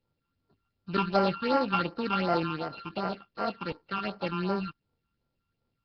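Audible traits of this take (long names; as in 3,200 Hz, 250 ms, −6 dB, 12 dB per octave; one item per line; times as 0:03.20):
a buzz of ramps at a fixed pitch in blocks of 32 samples
phaser sweep stages 8, 2.7 Hz, lowest notch 550–3,400 Hz
Nellymoser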